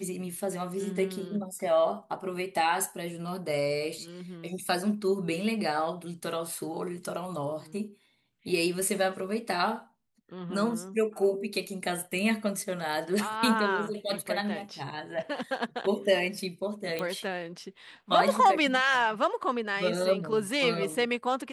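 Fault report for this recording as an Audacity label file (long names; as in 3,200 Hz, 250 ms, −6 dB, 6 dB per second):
16.990000	16.990000	click −18 dBFS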